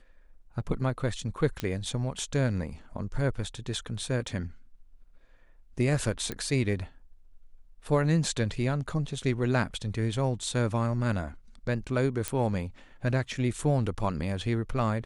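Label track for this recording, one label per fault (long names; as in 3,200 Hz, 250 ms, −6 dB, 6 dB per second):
1.600000	1.600000	click −16 dBFS
6.320000	6.320000	click −18 dBFS
12.280000	12.280000	click −12 dBFS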